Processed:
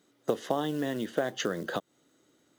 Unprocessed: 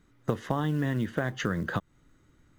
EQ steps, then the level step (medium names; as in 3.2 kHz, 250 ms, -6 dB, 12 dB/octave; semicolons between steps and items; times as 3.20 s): high-pass 380 Hz 12 dB/octave; high-order bell 1.5 kHz -8.5 dB; +5.0 dB